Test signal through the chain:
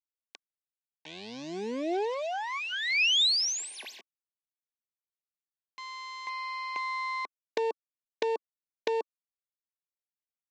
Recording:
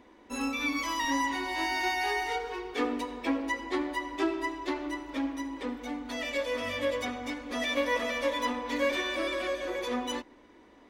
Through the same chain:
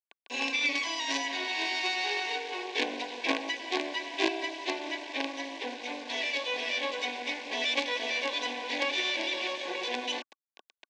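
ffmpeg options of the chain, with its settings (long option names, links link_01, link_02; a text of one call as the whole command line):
ffmpeg -i in.wav -filter_complex "[0:a]acrossover=split=420|3000[link_01][link_02][link_03];[link_02]acompressor=threshold=-37dB:ratio=5[link_04];[link_01][link_04][link_03]amix=inputs=3:normalize=0,acrusher=bits=5:dc=4:mix=0:aa=0.000001,asplit=2[link_05][link_06];[link_06]highpass=frequency=720:poles=1,volume=12dB,asoftclip=type=tanh:threshold=-15.5dB[link_07];[link_05][link_07]amix=inputs=2:normalize=0,lowpass=frequency=3100:poles=1,volume=-6dB,asuperstop=centerf=1300:order=12:qfactor=3.7,highpass=frequency=280:width=0.5412,highpass=frequency=280:width=1.3066,equalizer=frequency=300:width_type=q:width=4:gain=-4,equalizer=frequency=540:width_type=q:width=4:gain=-5,equalizer=frequency=970:width_type=q:width=4:gain=-6,equalizer=frequency=1700:width_type=q:width=4:gain=-6,equalizer=frequency=2500:width_type=q:width=4:gain=4,equalizer=frequency=3700:width_type=q:width=4:gain=3,lowpass=frequency=6300:width=0.5412,lowpass=frequency=6300:width=1.3066,volume=5dB" out.wav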